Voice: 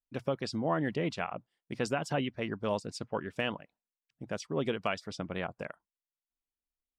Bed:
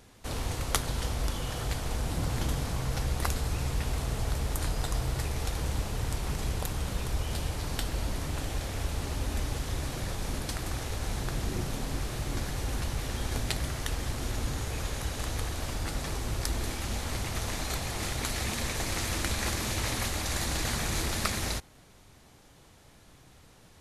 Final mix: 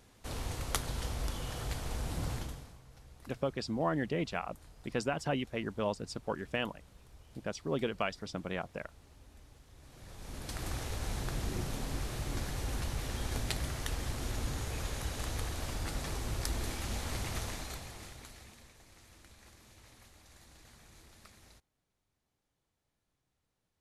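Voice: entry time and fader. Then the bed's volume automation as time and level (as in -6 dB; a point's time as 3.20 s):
3.15 s, -1.5 dB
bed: 2.32 s -5.5 dB
2.82 s -25.5 dB
9.72 s -25.5 dB
10.63 s -4 dB
17.36 s -4 dB
18.78 s -27.5 dB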